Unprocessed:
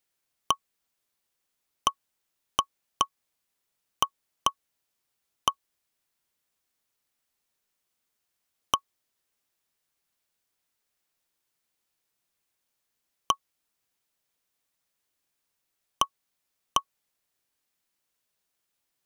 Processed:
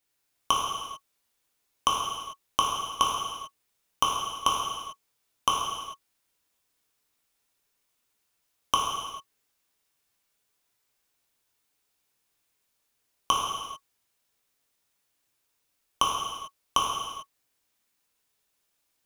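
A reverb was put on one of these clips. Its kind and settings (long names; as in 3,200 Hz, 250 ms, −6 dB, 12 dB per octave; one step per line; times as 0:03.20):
reverb whose tail is shaped and stops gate 470 ms falling, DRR −4 dB
level −1 dB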